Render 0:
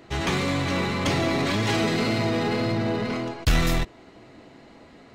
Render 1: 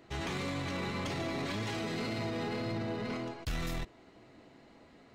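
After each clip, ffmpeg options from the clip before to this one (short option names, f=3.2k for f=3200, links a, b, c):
-af "alimiter=limit=-20dB:level=0:latency=1:release=35,volume=-9dB"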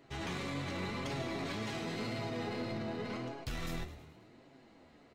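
-filter_complex "[0:a]asplit=2[a][b];[b]asplit=5[c][d][e][f][g];[c]adelay=106,afreqshift=37,volume=-13dB[h];[d]adelay=212,afreqshift=74,volume=-18.5dB[i];[e]adelay=318,afreqshift=111,volume=-24dB[j];[f]adelay=424,afreqshift=148,volume=-29.5dB[k];[g]adelay=530,afreqshift=185,volume=-35.1dB[l];[h][i][j][k][l]amix=inputs=5:normalize=0[m];[a][m]amix=inputs=2:normalize=0,flanger=delay=7.2:depth=6.7:regen=48:speed=0.89:shape=sinusoidal,volume=1dB"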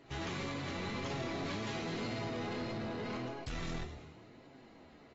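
-af "asoftclip=type=tanh:threshold=-37dB,volume=1.5dB" -ar 22050 -c:a aac -b:a 24k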